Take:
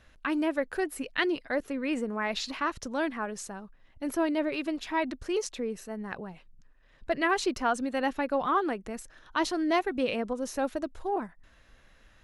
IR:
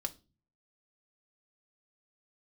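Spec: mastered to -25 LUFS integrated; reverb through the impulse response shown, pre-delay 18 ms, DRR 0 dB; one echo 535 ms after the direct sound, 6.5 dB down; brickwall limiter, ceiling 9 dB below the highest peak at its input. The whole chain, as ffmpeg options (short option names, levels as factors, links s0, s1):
-filter_complex "[0:a]alimiter=limit=0.0794:level=0:latency=1,aecho=1:1:535:0.473,asplit=2[s0][s1];[1:a]atrim=start_sample=2205,adelay=18[s2];[s1][s2]afir=irnorm=-1:irlink=0,volume=1[s3];[s0][s3]amix=inputs=2:normalize=0,volume=1.68"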